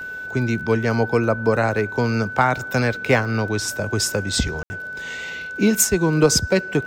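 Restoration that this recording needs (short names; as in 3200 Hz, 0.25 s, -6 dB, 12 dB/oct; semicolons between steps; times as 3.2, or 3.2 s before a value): de-click; notch 1500 Hz, Q 30; room tone fill 4.63–4.7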